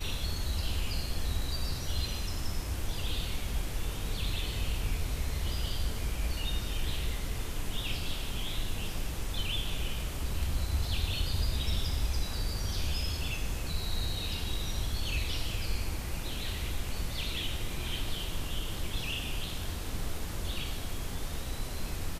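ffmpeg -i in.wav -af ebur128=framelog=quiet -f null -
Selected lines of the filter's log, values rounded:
Integrated loudness:
  I:         -35.2 LUFS
  Threshold: -45.2 LUFS
Loudness range:
  LRA:         2.8 LU
  Threshold: -55.1 LUFS
  LRA low:   -36.2 LUFS
  LRA high:  -33.5 LUFS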